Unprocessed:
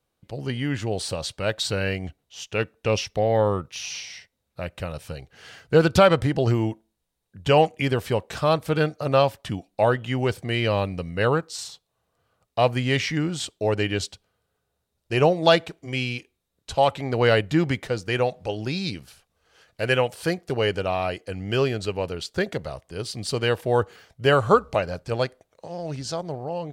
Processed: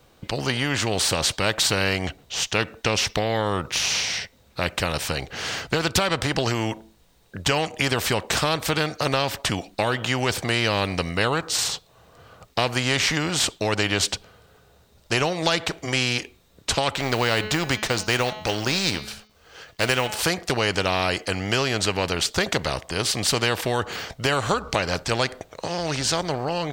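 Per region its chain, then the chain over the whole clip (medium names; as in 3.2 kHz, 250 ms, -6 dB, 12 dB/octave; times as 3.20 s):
16.95–20.19 s: companding laws mixed up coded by A + de-hum 213.8 Hz, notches 32
whole clip: peaking EQ 11 kHz -10.5 dB 0.54 oct; compression, threshold -22 dBFS; spectrum-flattening compressor 2:1; trim +6.5 dB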